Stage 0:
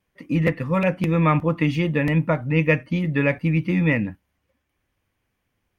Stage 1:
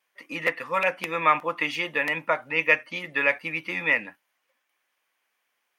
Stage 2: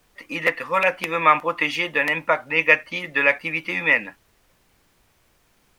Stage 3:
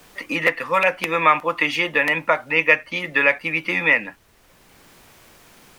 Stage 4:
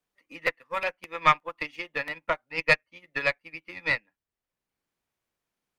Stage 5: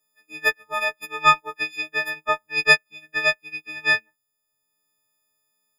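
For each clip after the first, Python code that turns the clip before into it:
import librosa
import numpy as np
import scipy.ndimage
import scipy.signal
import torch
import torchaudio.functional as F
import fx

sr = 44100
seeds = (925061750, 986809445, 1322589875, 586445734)

y1 = scipy.signal.sosfilt(scipy.signal.butter(2, 820.0, 'highpass', fs=sr, output='sos'), x)
y1 = F.gain(torch.from_numpy(y1), 3.5).numpy()
y2 = fx.dmg_noise_colour(y1, sr, seeds[0], colour='pink', level_db=-67.0)
y2 = F.gain(torch.from_numpy(y2), 4.5).numpy()
y3 = fx.band_squash(y2, sr, depth_pct=40)
y3 = F.gain(torch.from_numpy(y3), 1.5).numpy()
y4 = fx.tube_stage(y3, sr, drive_db=6.0, bias=0.65)
y4 = fx.upward_expand(y4, sr, threshold_db=-36.0, expansion=2.5)
y5 = fx.freq_snap(y4, sr, grid_st=6)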